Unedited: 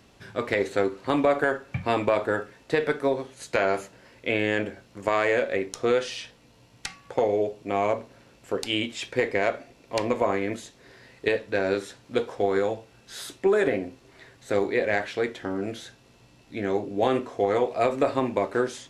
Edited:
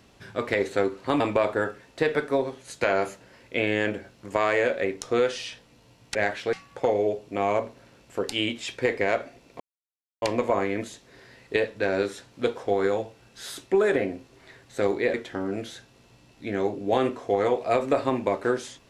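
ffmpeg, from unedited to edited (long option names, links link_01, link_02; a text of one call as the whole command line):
ffmpeg -i in.wav -filter_complex "[0:a]asplit=6[link_01][link_02][link_03][link_04][link_05][link_06];[link_01]atrim=end=1.202[link_07];[link_02]atrim=start=1.918:end=6.872[link_08];[link_03]atrim=start=14.858:end=15.242[link_09];[link_04]atrim=start=6.868:end=9.94,asetpts=PTS-STARTPTS,afade=type=out:start_time=3.068:duration=0.004:curve=hsin,apad=pad_dur=0.62[link_10];[link_05]atrim=start=9.94:end=14.862,asetpts=PTS-STARTPTS,afade=type=in:duration=0.004:curve=hsin[link_11];[link_06]atrim=start=15.238[link_12];[link_07][link_08]acrossfade=duration=0.004:curve1=hsin:curve2=hsin[link_13];[link_13][link_09]acrossfade=duration=0.004:curve1=hsin:curve2=hsin[link_14];[link_10][link_11]concat=n=2:v=0:a=1[link_15];[link_14][link_15]acrossfade=duration=0.004:curve1=hsin:curve2=hsin[link_16];[link_16][link_12]acrossfade=duration=0.004:curve1=hsin:curve2=hsin" out.wav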